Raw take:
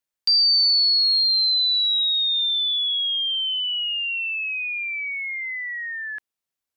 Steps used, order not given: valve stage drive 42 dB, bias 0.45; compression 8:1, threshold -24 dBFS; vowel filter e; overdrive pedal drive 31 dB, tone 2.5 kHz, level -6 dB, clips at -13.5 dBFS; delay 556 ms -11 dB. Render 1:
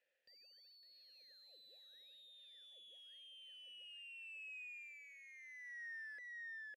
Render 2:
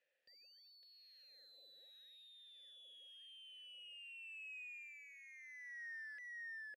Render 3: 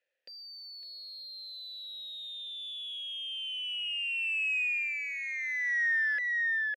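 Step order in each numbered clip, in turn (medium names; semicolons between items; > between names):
overdrive pedal > compression > delay > valve stage > vowel filter; compression > delay > overdrive pedal > valve stage > vowel filter; delay > compression > valve stage > vowel filter > overdrive pedal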